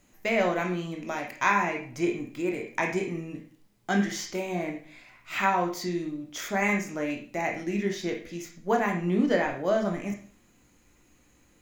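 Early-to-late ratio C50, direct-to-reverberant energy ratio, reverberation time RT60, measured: 7.0 dB, 1.5 dB, 0.50 s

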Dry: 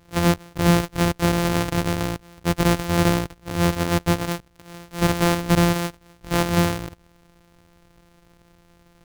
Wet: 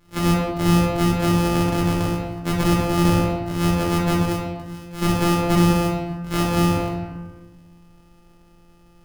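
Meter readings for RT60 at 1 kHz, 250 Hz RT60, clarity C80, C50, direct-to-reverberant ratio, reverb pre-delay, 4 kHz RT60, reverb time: 1.3 s, 1.9 s, 4.5 dB, 2.0 dB, -4.5 dB, 3 ms, 0.75 s, 1.3 s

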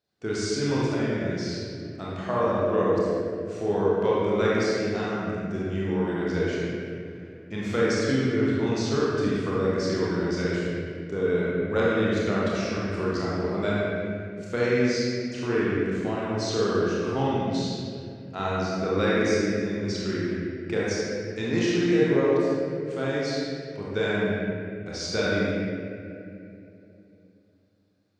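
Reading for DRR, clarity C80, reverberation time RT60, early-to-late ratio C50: -7.5 dB, -2.0 dB, 2.7 s, -4.5 dB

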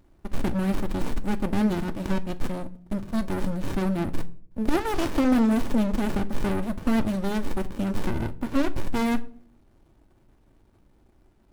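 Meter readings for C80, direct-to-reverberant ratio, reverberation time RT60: 23.0 dB, 9.5 dB, 0.55 s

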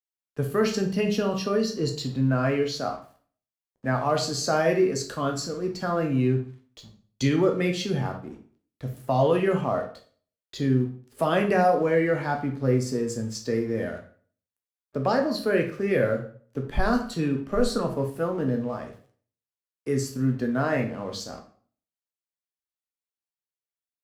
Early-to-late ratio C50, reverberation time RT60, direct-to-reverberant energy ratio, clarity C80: 10.0 dB, 0.50 s, 3.5 dB, 15.0 dB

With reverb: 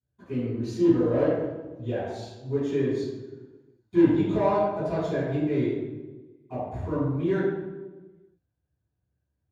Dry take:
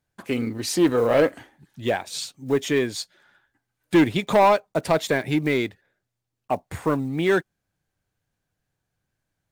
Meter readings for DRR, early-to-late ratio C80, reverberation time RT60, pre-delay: -19.0 dB, 1.0 dB, 1.3 s, 3 ms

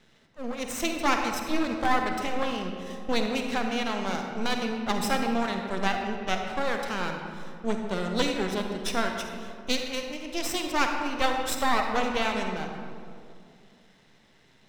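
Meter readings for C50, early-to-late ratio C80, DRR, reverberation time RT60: 3.5 dB, 5.0 dB, 3.0 dB, 2.3 s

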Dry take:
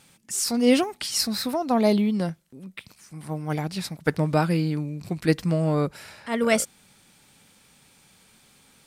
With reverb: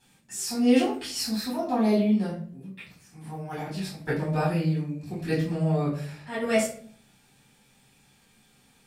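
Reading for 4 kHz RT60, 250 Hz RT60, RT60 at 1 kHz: 0.35 s, 0.85 s, 0.45 s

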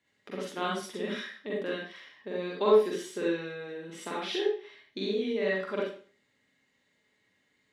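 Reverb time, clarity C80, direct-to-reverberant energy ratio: 0.45 s, 6.0 dB, -5.0 dB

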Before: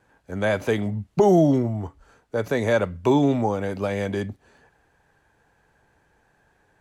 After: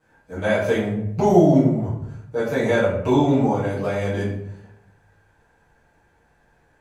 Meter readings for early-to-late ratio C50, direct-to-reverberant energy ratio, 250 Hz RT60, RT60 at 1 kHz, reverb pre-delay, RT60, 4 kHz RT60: 4.5 dB, -11.0 dB, 1.0 s, 0.70 s, 6 ms, 0.75 s, 0.45 s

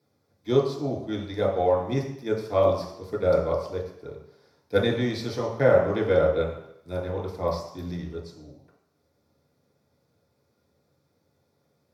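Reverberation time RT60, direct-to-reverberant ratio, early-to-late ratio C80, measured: 0.75 s, -4.0 dB, 8.0 dB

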